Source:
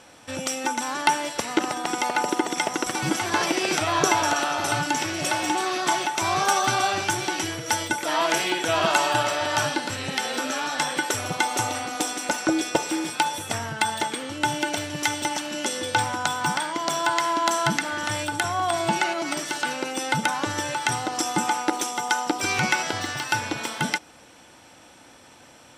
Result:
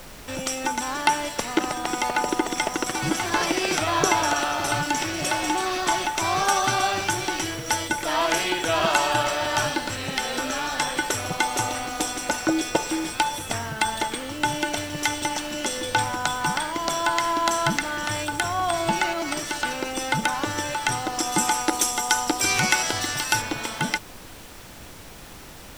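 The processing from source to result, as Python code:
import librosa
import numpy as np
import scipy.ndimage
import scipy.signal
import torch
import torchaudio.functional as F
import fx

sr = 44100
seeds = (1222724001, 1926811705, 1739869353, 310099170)

y = fx.high_shelf(x, sr, hz=5200.0, db=11.0, at=(21.32, 23.42))
y = fx.dmg_noise_colour(y, sr, seeds[0], colour='pink', level_db=-43.0)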